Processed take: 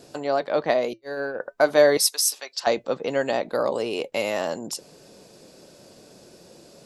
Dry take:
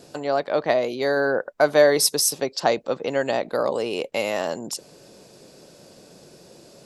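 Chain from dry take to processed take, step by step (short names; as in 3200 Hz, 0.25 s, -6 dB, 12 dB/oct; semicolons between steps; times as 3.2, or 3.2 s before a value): 0.93–1.4 gate -19 dBFS, range -53 dB; 1.97–2.67 HPF 1200 Hz 12 dB/oct; flange 0.5 Hz, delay 2.8 ms, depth 1.7 ms, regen -81%; gain +3.5 dB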